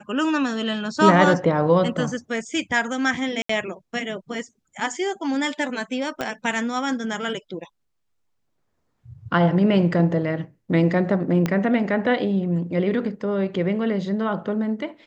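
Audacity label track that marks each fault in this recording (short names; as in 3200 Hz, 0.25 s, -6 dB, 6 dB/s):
3.420000	3.490000	gap 74 ms
6.210000	6.210000	pop -13 dBFS
11.460000	11.460000	pop -10 dBFS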